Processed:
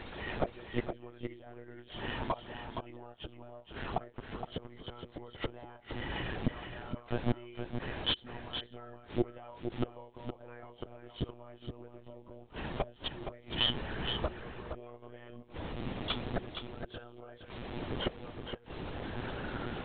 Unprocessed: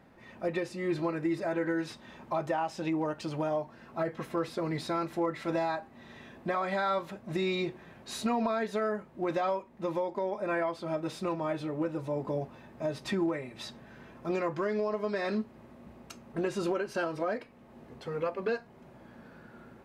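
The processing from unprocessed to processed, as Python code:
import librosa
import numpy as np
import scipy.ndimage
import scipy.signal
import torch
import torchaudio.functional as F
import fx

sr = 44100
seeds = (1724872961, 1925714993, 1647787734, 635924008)

p1 = fx.freq_compress(x, sr, knee_hz=2800.0, ratio=4.0)
p2 = fx.quant_dither(p1, sr, seeds[0], bits=8, dither='triangular')
p3 = p1 + F.gain(torch.from_numpy(p2), -3.0).numpy()
p4 = fx.gate_flip(p3, sr, shuts_db=-24.0, range_db=-32)
p5 = fx.lpc_monotone(p4, sr, seeds[1], pitch_hz=120.0, order=16)
p6 = p5 + 10.0 ** (-7.5 / 20.0) * np.pad(p5, (int(467 * sr / 1000.0), 0))[:len(p5)]
y = F.gain(torch.from_numpy(p6), 7.5).numpy()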